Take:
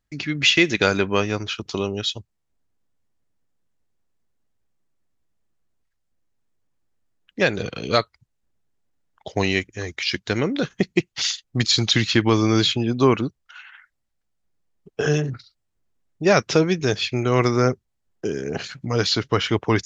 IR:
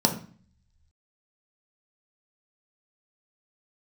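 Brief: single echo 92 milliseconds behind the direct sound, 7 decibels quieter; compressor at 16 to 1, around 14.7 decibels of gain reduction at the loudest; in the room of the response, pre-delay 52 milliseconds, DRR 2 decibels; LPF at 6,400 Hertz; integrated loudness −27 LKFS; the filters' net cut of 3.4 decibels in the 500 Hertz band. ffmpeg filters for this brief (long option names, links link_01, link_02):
-filter_complex "[0:a]lowpass=6400,equalizer=frequency=500:width_type=o:gain=-4.5,acompressor=threshold=-28dB:ratio=16,aecho=1:1:92:0.447,asplit=2[link_01][link_02];[1:a]atrim=start_sample=2205,adelay=52[link_03];[link_02][link_03]afir=irnorm=-1:irlink=0,volume=-15dB[link_04];[link_01][link_04]amix=inputs=2:normalize=0,volume=0.5dB"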